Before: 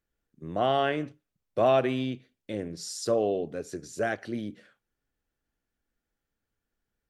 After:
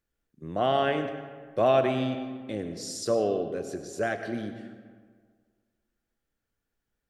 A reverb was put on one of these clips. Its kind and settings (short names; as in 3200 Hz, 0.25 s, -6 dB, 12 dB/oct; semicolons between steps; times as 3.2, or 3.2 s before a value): digital reverb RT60 1.7 s, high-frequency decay 0.55×, pre-delay 55 ms, DRR 8 dB